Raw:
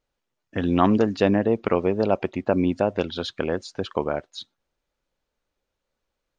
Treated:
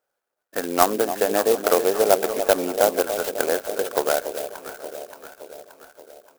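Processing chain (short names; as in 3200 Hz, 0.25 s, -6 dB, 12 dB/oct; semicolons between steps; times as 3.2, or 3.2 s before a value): speaker cabinet 430–4900 Hz, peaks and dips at 440 Hz +3 dB, 980 Hz -6 dB, 1500 Hz +9 dB; echo 0.719 s -21 dB; 0.83–1.31 compressor, threshold -20 dBFS, peak gain reduction 6 dB; bell 750 Hz +8.5 dB 1.5 oct; echo with dull and thin repeats by turns 0.288 s, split 820 Hz, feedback 74%, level -8.5 dB; clock jitter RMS 0.078 ms; gain -1 dB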